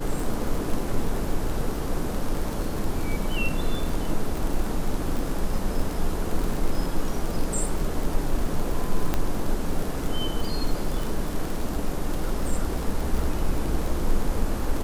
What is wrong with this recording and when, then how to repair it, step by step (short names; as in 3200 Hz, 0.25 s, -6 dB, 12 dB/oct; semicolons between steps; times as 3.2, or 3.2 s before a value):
crackle 39/s -26 dBFS
9.14 pop -10 dBFS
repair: de-click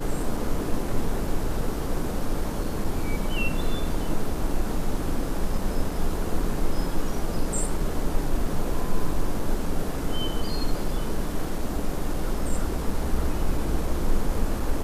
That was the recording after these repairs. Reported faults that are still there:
none